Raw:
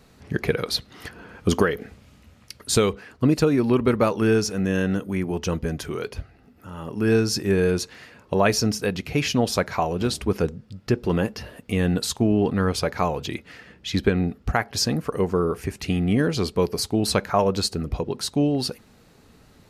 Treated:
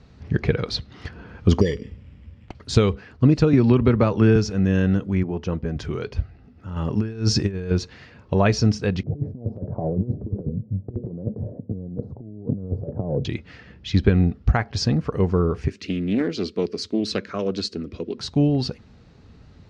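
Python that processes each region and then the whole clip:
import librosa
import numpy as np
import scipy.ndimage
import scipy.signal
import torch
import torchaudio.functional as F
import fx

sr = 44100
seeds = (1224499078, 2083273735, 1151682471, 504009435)

y = fx.chain(x, sr, fx.brickwall_bandstop(low_hz=600.0, high_hz=1700.0),
    fx.sample_hold(seeds[0], rate_hz=5200.0, jitter_pct=0),
    fx.air_absorb(metres=53.0), at=(1.61, 2.55))
y = fx.chain(y, sr, fx.high_shelf(hz=8900.0, db=-9.0),
    fx.band_squash(depth_pct=100), at=(3.53, 4.36))
y = fx.chain(y, sr, fx.highpass(hz=210.0, slope=6),
    fx.high_shelf(hz=2400.0, db=-10.0), at=(5.23, 5.76))
y = fx.chain(y, sr, fx.over_compress(threshold_db=-25.0, ratio=-0.5),
    fx.high_shelf(hz=5400.0, db=4.5), at=(6.76, 7.71))
y = fx.chain(y, sr, fx.ellip_bandpass(low_hz=100.0, high_hz=600.0, order=3, stop_db=60),
    fx.over_compress(threshold_db=-29.0, ratio=-0.5), at=(9.03, 13.25))
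y = fx.chain(y, sr, fx.highpass(hz=120.0, slope=24),
    fx.fixed_phaser(hz=330.0, stages=4),
    fx.doppler_dist(depth_ms=0.18), at=(15.68, 18.18))
y = scipy.signal.sosfilt(scipy.signal.butter(4, 5800.0, 'lowpass', fs=sr, output='sos'), y)
y = fx.peak_eq(y, sr, hz=75.0, db=12.0, octaves=2.6)
y = y * librosa.db_to_amplitude(-2.0)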